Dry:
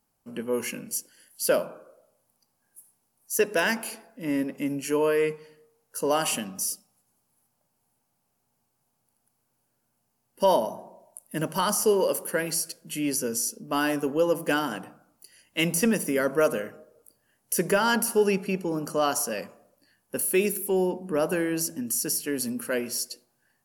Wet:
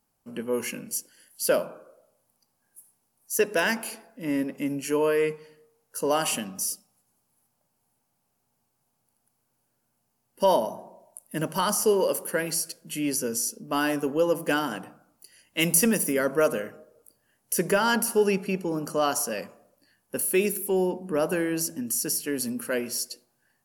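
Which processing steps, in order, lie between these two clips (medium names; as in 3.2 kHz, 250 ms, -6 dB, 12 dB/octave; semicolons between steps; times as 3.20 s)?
15.60–16.12 s: treble shelf 5.9 kHz -> 9.5 kHz +10 dB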